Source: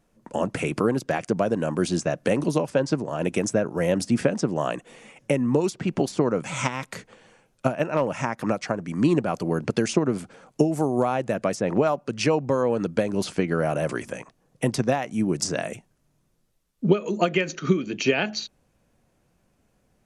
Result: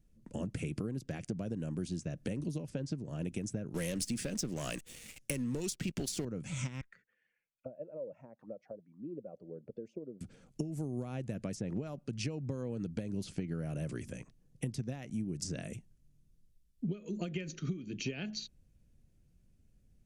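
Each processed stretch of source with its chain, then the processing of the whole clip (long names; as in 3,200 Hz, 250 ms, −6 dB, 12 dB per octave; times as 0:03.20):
0:03.74–0:06.25: gain on one half-wave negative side −3 dB + spectral tilt +3 dB per octave + leveller curve on the samples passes 3
0:06.81–0:10.21: expanding power law on the bin magnitudes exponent 1.5 + envelope filter 540–2,100 Hz, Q 4.5, down, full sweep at −22.5 dBFS
whole clip: guitar amp tone stack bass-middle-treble 10-0-1; downward compressor, threshold −45 dBFS; level +11.5 dB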